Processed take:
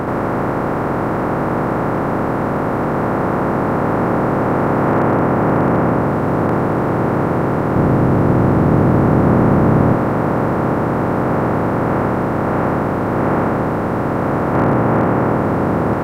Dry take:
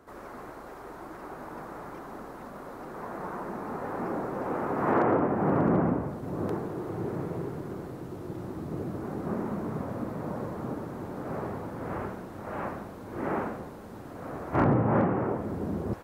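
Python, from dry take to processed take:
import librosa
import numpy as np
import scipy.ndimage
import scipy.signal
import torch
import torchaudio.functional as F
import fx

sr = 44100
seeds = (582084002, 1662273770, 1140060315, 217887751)

y = fx.bin_compress(x, sr, power=0.2)
y = fx.low_shelf(y, sr, hz=290.0, db=8.0, at=(7.76, 9.95))
y = F.gain(torch.from_numpy(y), 4.0).numpy()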